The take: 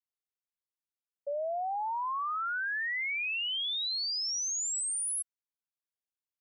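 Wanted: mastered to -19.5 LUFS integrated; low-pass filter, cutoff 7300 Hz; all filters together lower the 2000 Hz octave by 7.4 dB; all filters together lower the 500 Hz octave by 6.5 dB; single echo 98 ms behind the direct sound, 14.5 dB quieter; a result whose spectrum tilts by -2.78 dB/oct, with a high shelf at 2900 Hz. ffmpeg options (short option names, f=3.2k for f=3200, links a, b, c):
-af "lowpass=7.3k,equalizer=f=500:t=o:g=-8.5,equalizer=f=2k:t=o:g=-6.5,highshelf=f=2.9k:g=-6.5,aecho=1:1:98:0.188,volume=18dB"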